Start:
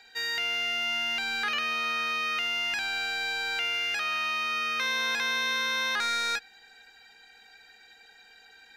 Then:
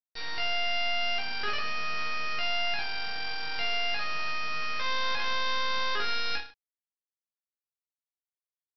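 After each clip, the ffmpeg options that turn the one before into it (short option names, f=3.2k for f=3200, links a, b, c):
-af "aresample=11025,acrusher=bits=4:dc=4:mix=0:aa=0.000001,aresample=44100,aecho=1:1:20|44|72.8|107.4|148.8:0.631|0.398|0.251|0.158|0.1,volume=-1dB"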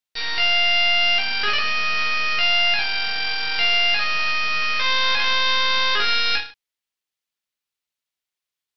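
-af "equalizer=f=3.1k:t=o:w=2:g=8,volume=5.5dB"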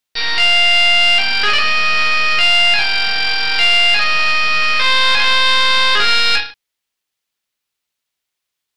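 -af "asoftclip=type=tanh:threshold=-10dB,volume=8dB"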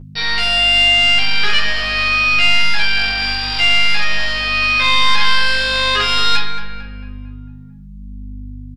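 -filter_complex "[0:a]aeval=exprs='val(0)+0.0398*(sin(2*PI*50*n/s)+sin(2*PI*2*50*n/s)/2+sin(2*PI*3*50*n/s)/3+sin(2*PI*4*50*n/s)/4+sin(2*PI*5*50*n/s)/5)':c=same,asplit=2[a][b];[b]adelay=224,lowpass=f=2.3k:p=1,volume=-9dB,asplit=2[c][d];[d]adelay=224,lowpass=f=2.3k:p=1,volume=0.55,asplit=2[e][f];[f]adelay=224,lowpass=f=2.3k:p=1,volume=0.55,asplit=2[g][h];[h]adelay=224,lowpass=f=2.3k:p=1,volume=0.55,asplit=2[i][j];[j]adelay=224,lowpass=f=2.3k:p=1,volume=0.55,asplit=2[k][l];[l]adelay=224,lowpass=f=2.3k:p=1,volume=0.55[m];[c][e][g][i][k][m]amix=inputs=6:normalize=0[n];[a][n]amix=inputs=2:normalize=0,asplit=2[o][p];[p]adelay=10.1,afreqshift=-0.79[q];[o][q]amix=inputs=2:normalize=1,volume=1dB"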